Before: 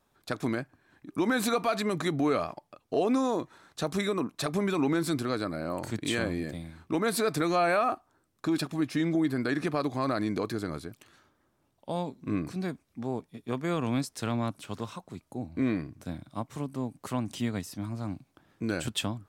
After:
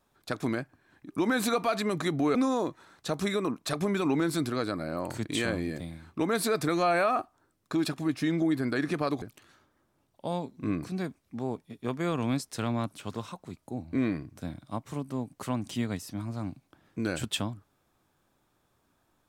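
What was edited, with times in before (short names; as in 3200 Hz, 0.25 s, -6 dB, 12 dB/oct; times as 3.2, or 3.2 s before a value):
2.35–3.08 cut
9.95–10.86 cut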